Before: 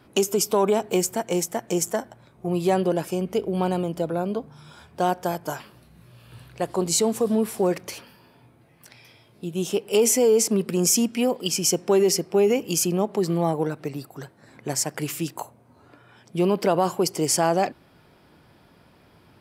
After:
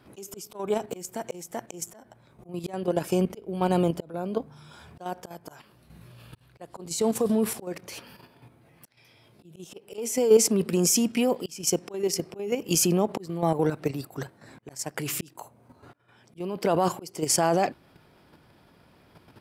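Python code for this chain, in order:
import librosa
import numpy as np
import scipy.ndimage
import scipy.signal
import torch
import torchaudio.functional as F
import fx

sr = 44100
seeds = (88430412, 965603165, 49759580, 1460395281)

y = fx.auto_swell(x, sr, attack_ms=479.0)
y = fx.level_steps(y, sr, step_db=9)
y = F.gain(torch.from_numpy(y), 5.0).numpy()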